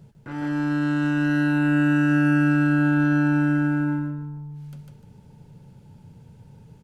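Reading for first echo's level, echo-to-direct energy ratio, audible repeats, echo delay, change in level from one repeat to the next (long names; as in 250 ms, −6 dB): −3.0 dB, −2.5 dB, 3, 150 ms, −11.5 dB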